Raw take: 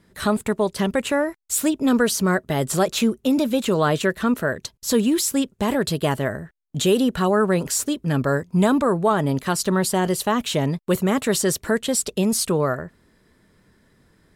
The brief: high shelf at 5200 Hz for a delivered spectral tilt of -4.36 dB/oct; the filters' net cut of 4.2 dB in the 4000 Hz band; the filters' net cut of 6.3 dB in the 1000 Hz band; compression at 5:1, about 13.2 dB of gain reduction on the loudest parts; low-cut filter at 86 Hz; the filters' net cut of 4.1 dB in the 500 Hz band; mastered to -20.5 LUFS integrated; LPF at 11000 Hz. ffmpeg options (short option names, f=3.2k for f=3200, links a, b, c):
-af "highpass=86,lowpass=11k,equalizer=f=500:t=o:g=-3.5,equalizer=f=1k:t=o:g=-7,equalizer=f=4k:t=o:g=-6.5,highshelf=f=5.2k:g=3,acompressor=threshold=-32dB:ratio=5,volume=14dB"